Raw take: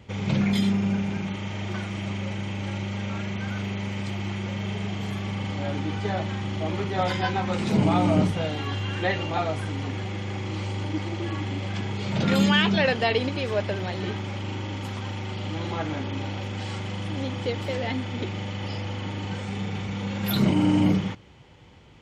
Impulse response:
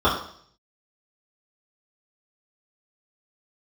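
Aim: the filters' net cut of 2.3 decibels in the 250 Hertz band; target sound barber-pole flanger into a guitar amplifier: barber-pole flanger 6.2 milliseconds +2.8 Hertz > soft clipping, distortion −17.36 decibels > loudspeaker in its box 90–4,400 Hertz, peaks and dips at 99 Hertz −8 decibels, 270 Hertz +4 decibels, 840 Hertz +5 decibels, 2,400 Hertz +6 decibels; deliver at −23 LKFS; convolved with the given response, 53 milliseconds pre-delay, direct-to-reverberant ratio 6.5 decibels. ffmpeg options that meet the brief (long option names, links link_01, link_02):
-filter_complex "[0:a]equalizer=frequency=250:width_type=o:gain=-4.5,asplit=2[link_01][link_02];[1:a]atrim=start_sample=2205,adelay=53[link_03];[link_02][link_03]afir=irnorm=-1:irlink=0,volume=-26.5dB[link_04];[link_01][link_04]amix=inputs=2:normalize=0,asplit=2[link_05][link_06];[link_06]adelay=6.2,afreqshift=2.8[link_07];[link_05][link_07]amix=inputs=2:normalize=1,asoftclip=threshold=-18.5dB,highpass=90,equalizer=frequency=99:width_type=q:width=4:gain=-8,equalizer=frequency=270:width_type=q:width=4:gain=4,equalizer=frequency=840:width_type=q:width=4:gain=5,equalizer=frequency=2400:width_type=q:width=4:gain=6,lowpass=frequency=4400:width=0.5412,lowpass=frequency=4400:width=1.3066,volume=8dB"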